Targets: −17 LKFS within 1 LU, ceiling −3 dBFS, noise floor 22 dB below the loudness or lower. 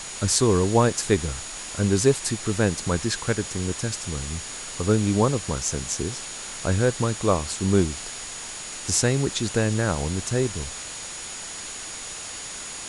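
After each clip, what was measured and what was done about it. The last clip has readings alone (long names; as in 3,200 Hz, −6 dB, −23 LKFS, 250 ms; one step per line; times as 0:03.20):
interfering tone 6,800 Hz; level of the tone −38 dBFS; background noise floor −36 dBFS; target noise floor −47 dBFS; integrated loudness −25.0 LKFS; sample peak −4.5 dBFS; target loudness −17.0 LKFS
→ notch filter 6,800 Hz, Q 30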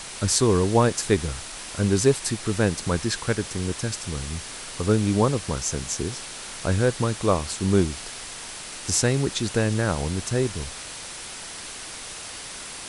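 interfering tone none found; background noise floor −38 dBFS; target noise floor −47 dBFS
→ broadband denoise 9 dB, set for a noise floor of −38 dBFS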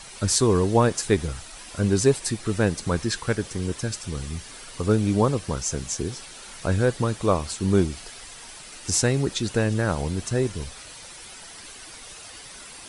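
background noise floor −43 dBFS; target noise floor −47 dBFS
→ broadband denoise 6 dB, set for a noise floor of −43 dBFS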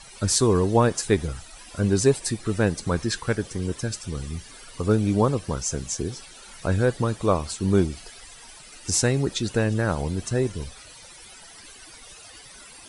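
background noise floor −46 dBFS; target noise floor −47 dBFS
→ broadband denoise 6 dB, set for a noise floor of −46 dBFS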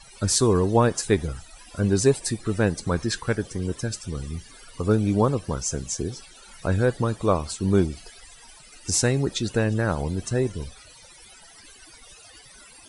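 background noise floor −49 dBFS; integrated loudness −24.5 LKFS; sample peak −5.5 dBFS; target loudness −17.0 LKFS
→ level +7.5 dB
brickwall limiter −3 dBFS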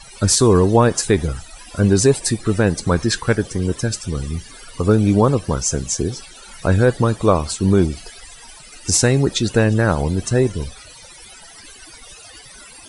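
integrated loudness −17.5 LKFS; sample peak −3.0 dBFS; background noise floor −42 dBFS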